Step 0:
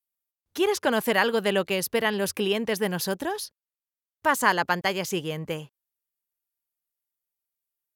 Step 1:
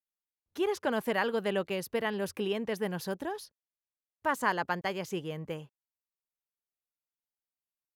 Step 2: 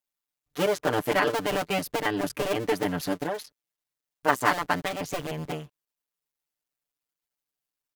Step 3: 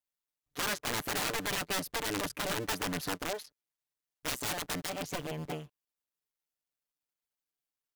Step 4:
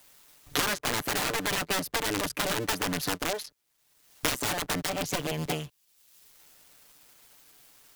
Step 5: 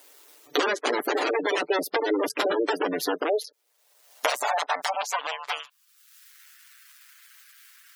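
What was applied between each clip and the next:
high-shelf EQ 2,600 Hz −8 dB; level −6 dB
sub-harmonics by changed cycles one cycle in 2, muted; comb filter 6.8 ms, depth 91%; level +6 dB
wrap-around overflow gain 21.5 dB; level −5 dB
multiband upward and downward compressor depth 100%; level +4.5 dB
high-pass filter sweep 380 Hz → 1,600 Hz, 0:03.09–0:06.34; gate on every frequency bin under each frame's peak −15 dB strong; level +4 dB

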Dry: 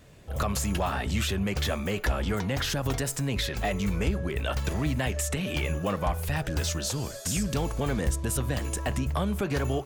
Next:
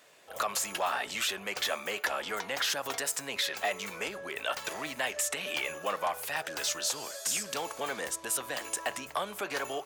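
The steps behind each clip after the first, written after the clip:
high-pass filter 650 Hz 12 dB per octave
level +1 dB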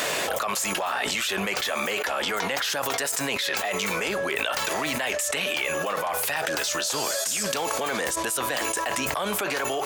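envelope flattener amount 100%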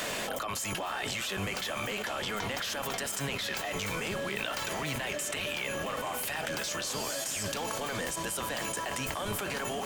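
sub-octave generator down 1 octave, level +2 dB
steady tone 3,100 Hz −42 dBFS
feedback delay with all-pass diffusion 938 ms, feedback 59%, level −12 dB
level −8 dB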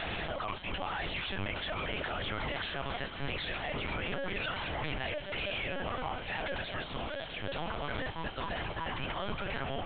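linear-prediction vocoder at 8 kHz pitch kept
level −1 dB

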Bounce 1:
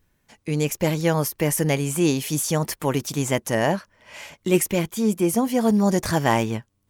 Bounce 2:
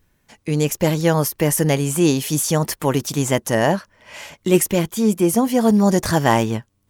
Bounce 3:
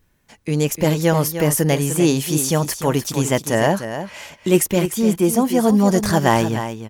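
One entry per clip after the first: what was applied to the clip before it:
dynamic equaliser 2,300 Hz, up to −5 dB, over −45 dBFS, Q 5.2; level +4 dB
single-tap delay 300 ms −10 dB

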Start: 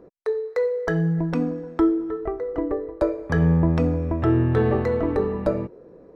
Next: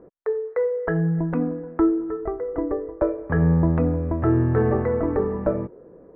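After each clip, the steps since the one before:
low-pass filter 1,900 Hz 24 dB per octave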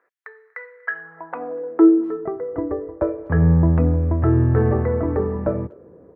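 high-pass filter sweep 1,800 Hz → 81 Hz, 0:00.87–0:02.68
far-end echo of a speakerphone 240 ms, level −27 dB

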